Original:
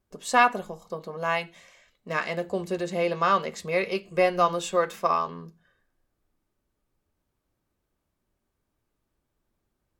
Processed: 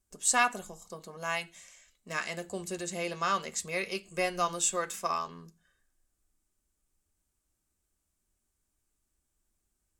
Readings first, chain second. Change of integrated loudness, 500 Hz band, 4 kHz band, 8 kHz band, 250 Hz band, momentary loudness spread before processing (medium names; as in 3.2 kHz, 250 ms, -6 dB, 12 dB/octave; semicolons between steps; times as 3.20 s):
-6.0 dB, -10.0 dB, -1.5 dB, +9.5 dB, -7.5 dB, 15 LU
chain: graphic EQ 125/250/500/1000/2000/4000/8000 Hz -9/-4/-9/-6/-3/-4/+12 dB